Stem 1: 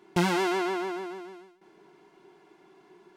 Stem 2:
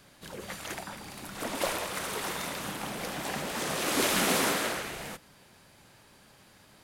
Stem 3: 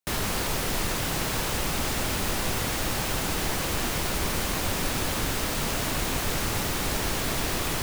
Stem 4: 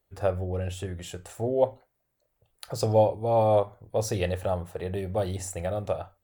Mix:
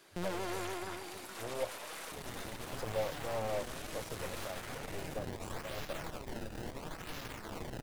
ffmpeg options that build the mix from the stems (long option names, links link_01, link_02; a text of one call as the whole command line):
ffmpeg -i stem1.wav -i stem2.wav -i stem3.wav -i stem4.wav -filter_complex "[0:a]aeval=exprs='(tanh(17.8*val(0)+0.6)-tanh(0.6))/17.8':channel_layout=same,volume=-11dB[link_01];[1:a]highpass=330,acompressor=threshold=-34dB:ratio=6,volume=0.5dB[link_02];[2:a]acrusher=samples=23:mix=1:aa=0.000001:lfo=1:lforange=36.8:lforate=0.73,adelay=2050,volume=-7.5dB[link_03];[3:a]equalizer=frequency=560:width=1.5:gain=5.5,volume=-20dB[link_04];[link_02][link_03]amix=inputs=2:normalize=0,flanger=delay=6.1:depth=3:regen=50:speed=1:shape=sinusoidal,alimiter=level_in=12dB:limit=-24dB:level=0:latency=1:release=40,volume=-12dB,volume=0dB[link_05];[link_01][link_04][link_05]amix=inputs=3:normalize=0,aeval=exprs='0.0596*(cos(1*acos(clip(val(0)/0.0596,-1,1)))-cos(1*PI/2))+0.00596*(cos(8*acos(clip(val(0)/0.0596,-1,1)))-cos(8*PI/2))':channel_layout=same" out.wav